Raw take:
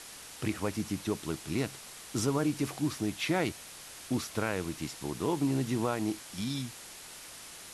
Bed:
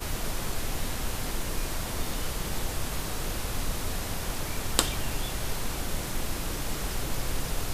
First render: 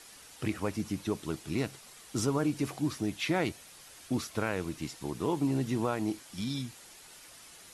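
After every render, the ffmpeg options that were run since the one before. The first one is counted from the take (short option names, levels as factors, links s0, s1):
-af "afftdn=nr=7:nf=-48"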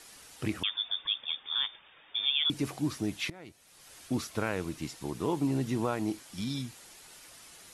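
-filter_complex "[0:a]asettb=1/sr,asplit=3[s0][s1][s2];[s0]atrim=end=0.634[s3];[s1]atrim=start=0.63:end=2.5,asetpts=PTS-STARTPTS,afade=t=in:d=0.004:c=qsin,afade=t=out:st=1.866:d=0.004:c=qsin,lowpass=f=3100:t=q:w=0.5098,lowpass=f=3100:t=q:w=0.6013,lowpass=f=3100:t=q:w=0.9,lowpass=f=3100:t=q:w=2.563,afreqshift=-3700[s4];[s2]atrim=start=2.496[s5];[s3][s4]acrossfade=d=0.004:c1=hsin:c2=qsin[s6];[s6][s5]acrossfade=d=0.004:c1=qsin:c2=hsin,asplit=2[s7][s8];[s7]atrim=end=3.3,asetpts=PTS-STARTPTS,afade=t=out:st=3.296:d=0.004:c=hsin:silence=0.0841395[s9];[s8]atrim=start=3.3,asetpts=PTS-STARTPTS,afade=t=in:d=0.63:c=qua:silence=0.0841395[s10];[s9][s10]concat=n=2:v=0:a=1"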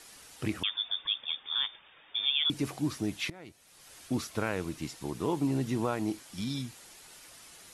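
-af anull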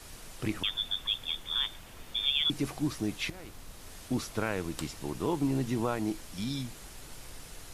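-filter_complex "[1:a]volume=0.133[s0];[0:a][s0]amix=inputs=2:normalize=0"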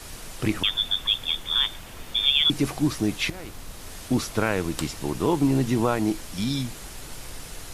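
-af "volume=2.51"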